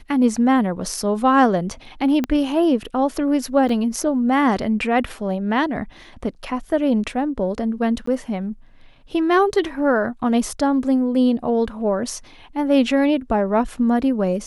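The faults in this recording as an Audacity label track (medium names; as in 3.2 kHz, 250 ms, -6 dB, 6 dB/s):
2.240000	2.240000	pop -10 dBFS
3.690000	3.690000	dropout 4 ms
8.060000	8.070000	dropout 14 ms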